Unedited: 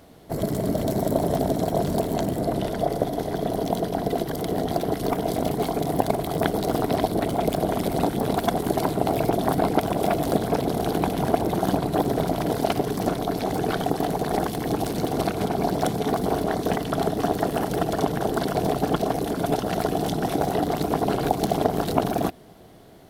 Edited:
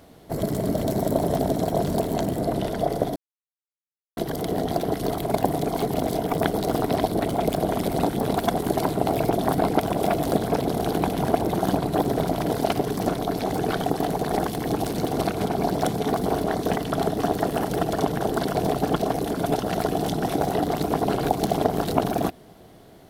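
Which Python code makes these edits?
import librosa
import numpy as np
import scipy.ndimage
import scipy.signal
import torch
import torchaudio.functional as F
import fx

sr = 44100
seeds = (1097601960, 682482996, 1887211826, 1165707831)

y = fx.edit(x, sr, fx.silence(start_s=3.16, length_s=1.01),
    fx.reverse_span(start_s=5.12, length_s=1.21), tone=tone)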